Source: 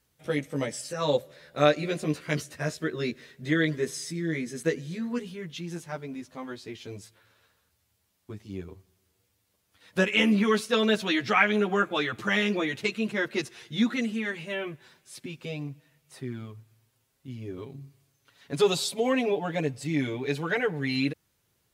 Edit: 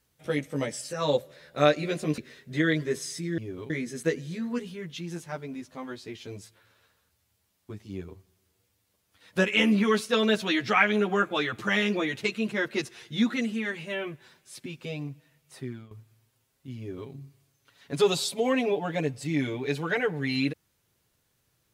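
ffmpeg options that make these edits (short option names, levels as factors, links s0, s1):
-filter_complex "[0:a]asplit=5[s0][s1][s2][s3][s4];[s0]atrim=end=2.182[s5];[s1]atrim=start=3.098:end=4.302[s6];[s2]atrim=start=17.378:end=17.702[s7];[s3]atrim=start=4.298:end=16.51,asetpts=PTS-STARTPTS,afade=t=out:st=11.942:d=0.27:silence=0.199526[s8];[s4]atrim=start=16.51,asetpts=PTS-STARTPTS,afade=t=in:d=0.004:c=hsin:silence=0.199526[s9];[s5][s6]acrossfade=d=0.004:c1=hsin:c2=hsin[s10];[s10][s7]acrossfade=d=0.004:c1=hsin:c2=hsin[s11];[s8][s9]concat=n=2:v=0:a=1[s12];[s11][s12]acrossfade=d=0.004:c1=hsin:c2=hsin"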